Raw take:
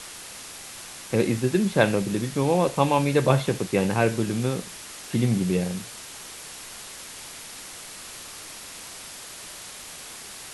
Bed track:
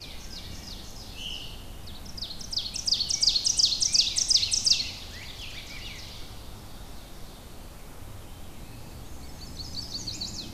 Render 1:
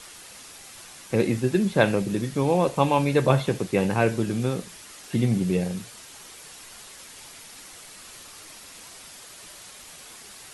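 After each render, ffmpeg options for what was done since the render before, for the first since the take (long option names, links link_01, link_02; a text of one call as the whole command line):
ffmpeg -i in.wav -af "afftdn=noise_reduction=6:noise_floor=-41" out.wav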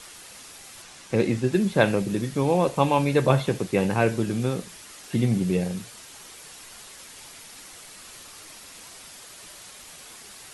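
ffmpeg -i in.wav -filter_complex "[0:a]asettb=1/sr,asplit=3[link_01][link_02][link_03];[link_01]atrim=end=0.824[link_04];[link_02]atrim=start=0.82:end=1.53,asetpts=PTS-STARTPTS,afade=type=in:duration=0.004:curve=qsin,afade=type=out:start_time=0.706:duration=0.004:curve=qsin,lowpass=8700[link_05];[link_03]atrim=start=1.526[link_06];[link_04][link_05]acrossfade=duration=0.004:curve1=hsin:curve2=qsin[link_07];[link_07][link_06]acrossfade=duration=0.004:curve1=qsin:curve2=hsin" out.wav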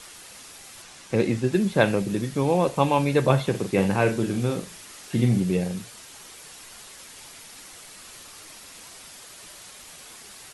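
ffmpeg -i in.wav -filter_complex "[0:a]asplit=3[link_01][link_02][link_03];[link_01]afade=type=out:start_time=3.53:duration=0.02[link_04];[link_02]asplit=2[link_05][link_06];[link_06]adelay=41,volume=-7.5dB[link_07];[link_05][link_07]amix=inputs=2:normalize=0,afade=type=in:start_time=3.53:duration=0.02,afade=type=out:start_time=5.4:duration=0.02[link_08];[link_03]afade=type=in:start_time=5.4:duration=0.02[link_09];[link_04][link_08][link_09]amix=inputs=3:normalize=0" out.wav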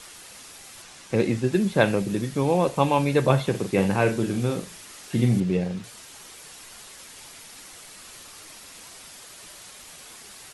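ffmpeg -i in.wav -filter_complex "[0:a]asettb=1/sr,asplit=3[link_01][link_02][link_03];[link_01]atrim=end=5.404[link_04];[link_02]atrim=start=5.4:end=5.84,asetpts=PTS-STARTPTS,afade=type=in:duration=0.004:curve=qsin,afade=type=out:start_time=0.436:duration=0.004:curve=qsin,adynamicsmooth=sensitivity=2.5:basefreq=5100[link_05];[link_03]atrim=start=5.836[link_06];[link_04][link_05]acrossfade=duration=0.004:curve1=hsin:curve2=qsin[link_07];[link_07][link_06]acrossfade=duration=0.004:curve1=qsin:curve2=hsin" out.wav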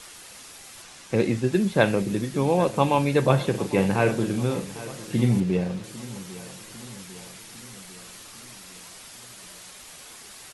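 ffmpeg -i in.wav -af "aecho=1:1:800|1600|2400|3200|4000:0.141|0.0805|0.0459|0.0262|0.0149" out.wav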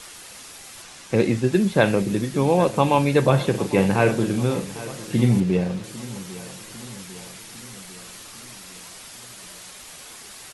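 ffmpeg -i in.wav -af "volume=3dB,alimiter=limit=-3dB:level=0:latency=1" out.wav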